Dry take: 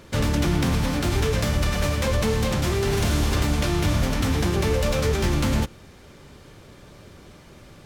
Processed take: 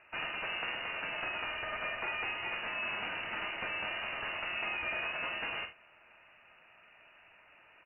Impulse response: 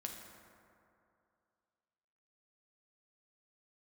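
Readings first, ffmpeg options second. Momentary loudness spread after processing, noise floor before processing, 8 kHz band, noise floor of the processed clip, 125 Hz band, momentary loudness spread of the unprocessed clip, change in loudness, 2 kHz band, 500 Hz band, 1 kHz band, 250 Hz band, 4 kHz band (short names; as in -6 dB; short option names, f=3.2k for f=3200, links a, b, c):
2 LU, -48 dBFS, under -40 dB, -61 dBFS, -36.0 dB, 1 LU, -12.5 dB, -3.0 dB, -19.5 dB, -9.0 dB, -28.5 dB, -9.0 dB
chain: -af "highpass=f=1.1k:p=1,lowpass=f=2.6k:t=q:w=0.5098,lowpass=f=2.6k:t=q:w=0.6013,lowpass=f=2.6k:t=q:w=0.9,lowpass=f=2.6k:t=q:w=2.563,afreqshift=-3000,aecho=1:1:46|74:0.355|0.178,volume=-5dB"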